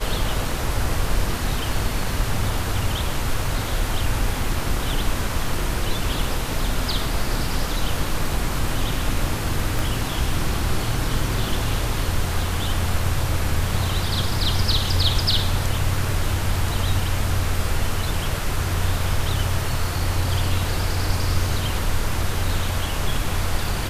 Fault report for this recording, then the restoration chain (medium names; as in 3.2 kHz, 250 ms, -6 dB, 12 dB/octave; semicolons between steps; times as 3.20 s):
9.79 s: pop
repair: de-click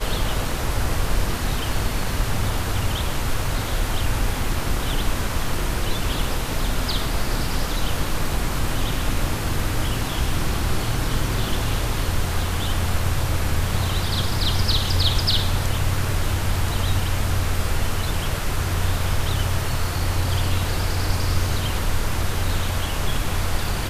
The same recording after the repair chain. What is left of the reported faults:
nothing left